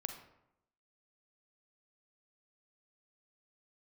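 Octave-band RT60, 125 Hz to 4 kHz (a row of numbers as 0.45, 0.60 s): 0.90, 0.90, 0.85, 0.80, 0.65, 0.50 s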